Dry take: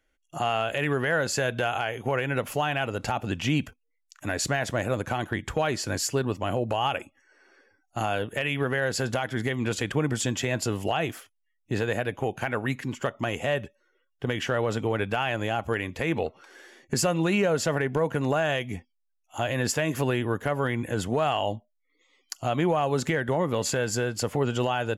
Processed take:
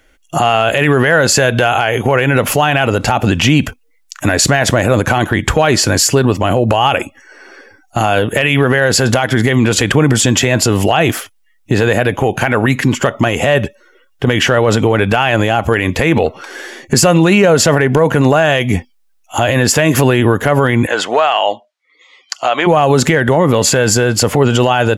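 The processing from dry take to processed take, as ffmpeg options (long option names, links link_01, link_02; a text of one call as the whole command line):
ffmpeg -i in.wav -filter_complex "[0:a]asplit=3[link_01][link_02][link_03];[link_01]afade=type=out:start_time=20.86:duration=0.02[link_04];[link_02]highpass=680,lowpass=5000,afade=type=in:start_time=20.86:duration=0.02,afade=type=out:start_time=22.66:duration=0.02[link_05];[link_03]afade=type=in:start_time=22.66:duration=0.02[link_06];[link_04][link_05][link_06]amix=inputs=3:normalize=0,alimiter=level_in=22dB:limit=-1dB:release=50:level=0:latency=1,volume=-1dB" out.wav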